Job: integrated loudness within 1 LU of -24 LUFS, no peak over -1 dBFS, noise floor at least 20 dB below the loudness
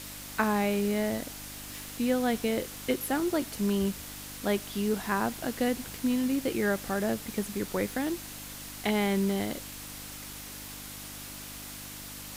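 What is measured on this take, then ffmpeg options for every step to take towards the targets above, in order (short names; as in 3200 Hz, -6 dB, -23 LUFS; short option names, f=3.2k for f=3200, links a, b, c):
hum 50 Hz; harmonics up to 300 Hz; hum level -48 dBFS; noise floor -43 dBFS; noise floor target -52 dBFS; loudness -31.5 LUFS; peak -13.5 dBFS; loudness target -24.0 LUFS
-> -af "bandreject=f=50:t=h:w=4,bandreject=f=100:t=h:w=4,bandreject=f=150:t=h:w=4,bandreject=f=200:t=h:w=4,bandreject=f=250:t=h:w=4,bandreject=f=300:t=h:w=4"
-af "afftdn=nr=9:nf=-43"
-af "volume=7.5dB"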